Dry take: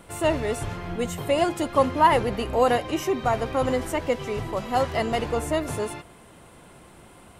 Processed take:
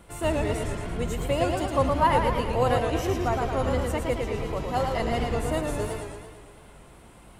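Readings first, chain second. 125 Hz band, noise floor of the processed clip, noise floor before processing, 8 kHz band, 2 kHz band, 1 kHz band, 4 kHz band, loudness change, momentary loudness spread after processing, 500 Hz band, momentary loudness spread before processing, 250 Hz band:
+3.5 dB, -50 dBFS, -50 dBFS, -2.5 dB, -2.5 dB, -2.5 dB, -2.5 dB, -2.0 dB, 9 LU, -2.5 dB, 11 LU, -1.5 dB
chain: octave divider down 2 oct, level +2 dB; modulated delay 112 ms, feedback 61%, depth 131 cents, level -4 dB; trim -4.5 dB

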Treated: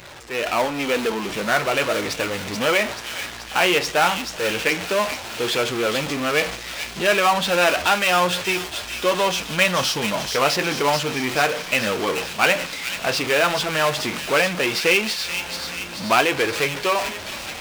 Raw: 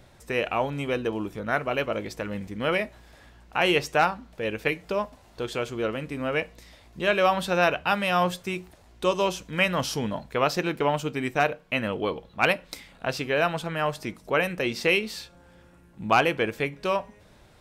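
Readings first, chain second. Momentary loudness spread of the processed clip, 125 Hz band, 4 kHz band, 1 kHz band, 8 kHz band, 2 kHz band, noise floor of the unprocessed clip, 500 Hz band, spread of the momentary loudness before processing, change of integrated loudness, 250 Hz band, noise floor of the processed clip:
8 LU, +1.0 dB, +10.5 dB, +5.0 dB, +14.0 dB, +7.0 dB, -55 dBFS, +4.5 dB, 10 LU, +5.5 dB, +3.0 dB, -34 dBFS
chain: jump at every zero crossing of -31 dBFS; flange 0.12 Hz, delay 1.9 ms, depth 9.7 ms, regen -53%; level rider gain up to 10 dB; tape spacing loss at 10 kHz 27 dB; gate -30 dBFS, range -8 dB; power-law waveshaper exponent 0.7; tilt EQ +3.5 dB/octave; feedback echo behind a high-pass 432 ms, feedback 63%, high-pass 3.1 kHz, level -4 dB; trim -1 dB

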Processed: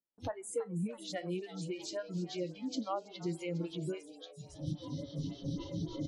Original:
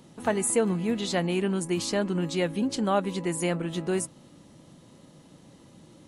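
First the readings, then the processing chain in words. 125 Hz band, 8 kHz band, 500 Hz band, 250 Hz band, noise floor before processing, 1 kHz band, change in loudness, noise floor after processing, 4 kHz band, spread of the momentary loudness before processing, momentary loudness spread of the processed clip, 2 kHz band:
-6.5 dB, -16.0 dB, -11.5 dB, -10.5 dB, -54 dBFS, -11.5 dB, -12.0 dB, -55 dBFS, -10.0 dB, 5 LU, 5 LU, -15.0 dB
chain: recorder AGC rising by 31 dB/s; bass shelf 190 Hz +5 dB; feedback comb 51 Hz, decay 1.5 s, harmonics all, mix 60%; gate with hold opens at -36 dBFS; on a send: feedback echo behind a high-pass 493 ms, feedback 36%, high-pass 3.4 kHz, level -3.5 dB; on the sum: compression 6:1, threshold -33 dBFS, peak gain reduction 9 dB; spectral noise reduction 24 dB; distance through air 70 m; frequency-shifting echo 330 ms, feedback 43%, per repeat +130 Hz, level -16 dB; lamp-driven phase shifter 3.6 Hz; trim +4 dB

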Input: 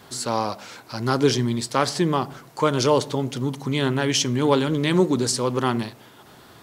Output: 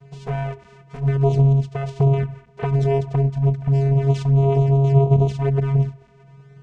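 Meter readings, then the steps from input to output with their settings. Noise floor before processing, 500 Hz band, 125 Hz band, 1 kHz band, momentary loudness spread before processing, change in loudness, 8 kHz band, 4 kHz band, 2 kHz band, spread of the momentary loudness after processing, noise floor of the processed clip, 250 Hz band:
-49 dBFS, -0.5 dB, +11.5 dB, -5.0 dB, 9 LU, +3.0 dB, under -20 dB, under -15 dB, no reading, 12 LU, -50 dBFS, -1.5 dB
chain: tracing distortion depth 0.031 ms; dynamic bell 450 Hz, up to +4 dB, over -31 dBFS, Q 2.5; short-mantissa float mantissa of 2-bit; treble shelf 2.8 kHz -10 dB; peak limiter -12 dBFS, peak gain reduction 7.5 dB; vocoder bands 4, square 137 Hz; harmonic-percussive split percussive +6 dB; touch-sensitive flanger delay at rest 7.6 ms, full sweep at -18.5 dBFS; trim +6.5 dB

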